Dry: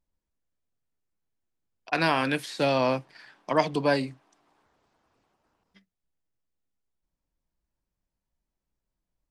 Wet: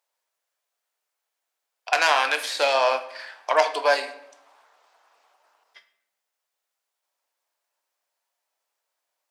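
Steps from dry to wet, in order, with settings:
phase distortion by the signal itself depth 0.07 ms
high-pass filter 590 Hz 24 dB per octave
in parallel at +2 dB: downward compressor, threshold −36 dBFS, peak gain reduction 16.5 dB
on the sum: rectangular room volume 190 cubic metres, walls mixed, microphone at 0.38 metres
level +3.5 dB

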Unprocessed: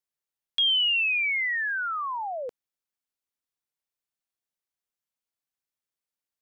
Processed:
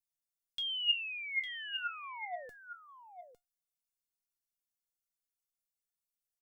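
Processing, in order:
bass and treble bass +12 dB, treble +13 dB
tuned comb filter 710 Hz, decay 0.17 s, harmonics all, mix 90%
0:02.03–0:02.46: mid-hump overdrive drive 10 dB, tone 1,800 Hz, clips at −32.5 dBFS
on a send: single-tap delay 855 ms −10 dB

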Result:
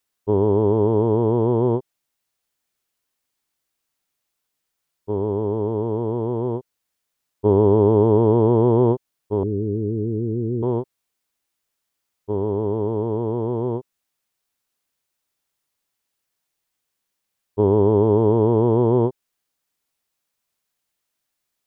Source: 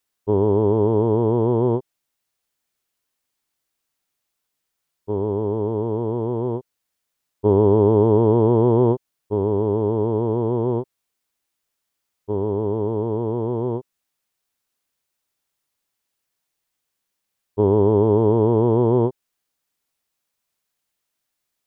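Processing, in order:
0:09.43–0:10.63: inverse Chebyshev band-stop filter 910–2,900 Hz, stop band 60 dB

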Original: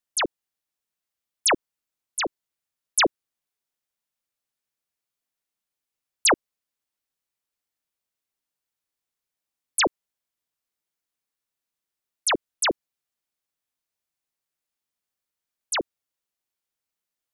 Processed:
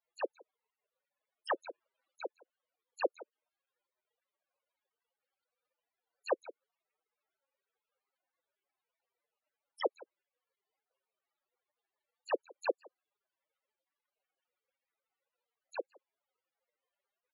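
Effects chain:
spectral dynamics exaggerated over time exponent 2
surface crackle 490 per second −62 dBFS
on a send: single-tap delay 166 ms −24 dB
on the sum: brickwall limiter −22 dBFS, peak gain reduction 8 dB
spectral peaks only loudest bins 16
four-pole ladder high-pass 460 Hz, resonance 60%
parametric band 630 Hz −3.5 dB 0.32 octaves
0:01.49–0:02.20: transient designer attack −9 dB, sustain +7 dB
low-pass filter 4,500 Hz
level +6.5 dB

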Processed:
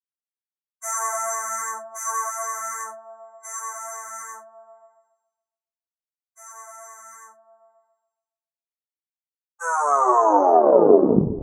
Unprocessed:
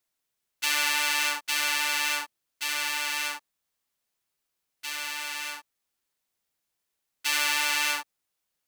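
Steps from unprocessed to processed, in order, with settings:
turntable brake at the end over 1.80 s
drawn EQ curve 160 Hz 0 dB, 560 Hz +7 dB, 1,600 Hz +6 dB, 5,400 Hz −17 dB, 8,200 Hz +14 dB
in parallel at −1.5 dB: brickwall limiter −16 dBFS, peak gain reduction 13 dB
on the sum: speed change −24%
on a send: echo whose low-pass opens from repeat to repeat 139 ms, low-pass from 200 Hz, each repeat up 1 octave, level −6 dB
on the sum: every bin expanded away from the loudest bin 2.5 to 1

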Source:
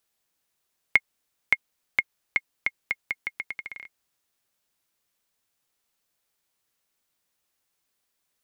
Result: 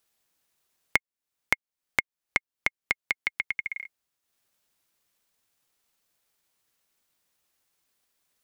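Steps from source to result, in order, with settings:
0:03.00–0:03.71: high-pass filter 53 Hz 24 dB per octave
transient designer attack +11 dB, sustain −7 dB
downward compressor 3 to 1, threshold −29 dBFS, peak gain reduction 19 dB
level +2 dB

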